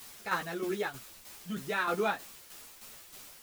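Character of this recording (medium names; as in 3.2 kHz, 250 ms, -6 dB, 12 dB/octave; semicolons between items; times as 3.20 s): a quantiser's noise floor 8-bit, dither triangular; tremolo saw down 3.2 Hz, depth 60%; a shimmering, thickened sound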